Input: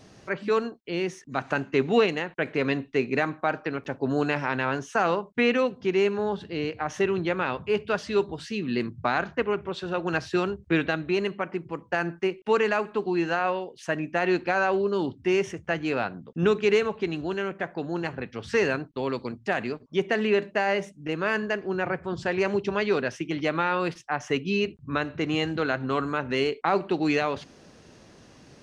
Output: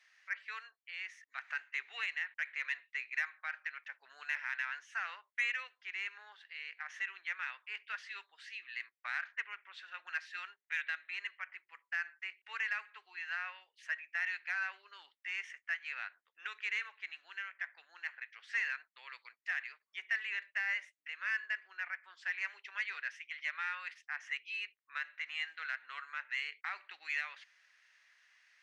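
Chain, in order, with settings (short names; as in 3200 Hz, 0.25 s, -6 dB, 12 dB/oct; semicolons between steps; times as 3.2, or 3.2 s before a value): ladder high-pass 1700 Hz, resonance 60%; high shelf 3000 Hz -11.5 dB; in parallel at -4.5 dB: soft clip -32 dBFS, distortion -14 dB; on the sum: gain -1.5 dB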